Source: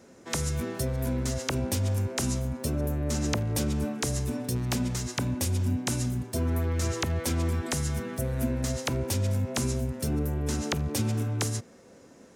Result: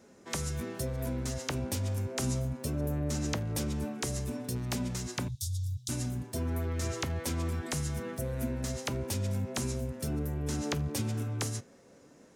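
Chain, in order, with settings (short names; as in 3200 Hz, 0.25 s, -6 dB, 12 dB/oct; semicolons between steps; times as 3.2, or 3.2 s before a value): 5.28–5.89 Chebyshev band-stop 130–3500 Hz, order 5; flange 0.22 Hz, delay 4.7 ms, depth 3 ms, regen +76%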